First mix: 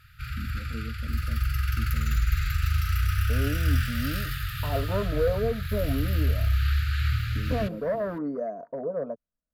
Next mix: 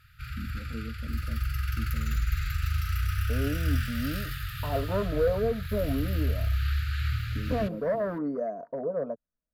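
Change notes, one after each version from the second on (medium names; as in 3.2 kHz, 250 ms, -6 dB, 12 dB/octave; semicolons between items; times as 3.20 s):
background -3.5 dB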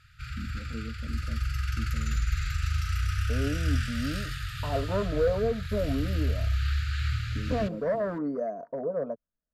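master: add resonant low-pass 7.5 kHz, resonance Q 1.7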